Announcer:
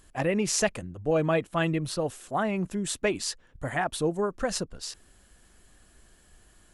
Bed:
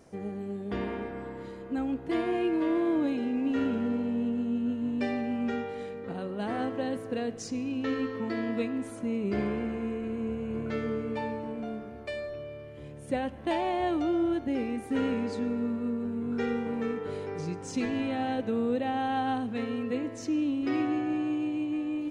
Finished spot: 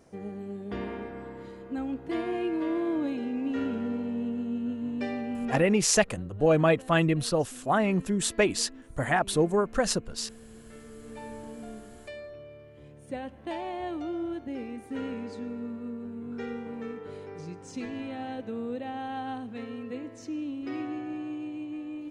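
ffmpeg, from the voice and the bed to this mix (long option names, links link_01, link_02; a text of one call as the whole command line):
ffmpeg -i stem1.wav -i stem2.wav -filter_complex "[0:a]adelay=5350,volume=3dB[link_01];[1:a]volume=8.5dB,afade=type=out:start_time=5.49:duration=0.33:silence=0.188365,afade=type=in:start_time=10.93:duration=0.47:silence=0.298538[link_02];[link_01][link_02]amix=inputs=2:normalize=0" out.wav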